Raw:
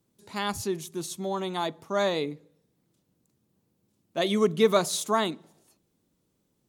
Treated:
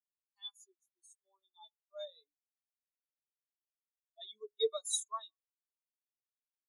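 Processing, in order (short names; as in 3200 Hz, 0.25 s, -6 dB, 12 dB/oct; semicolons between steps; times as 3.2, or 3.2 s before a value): differentiator; on a send at -11 dB: reverb RT60 1.2 s, pre-delay 31 ms; on the sum: spectral expander 4:1; gain -2 dB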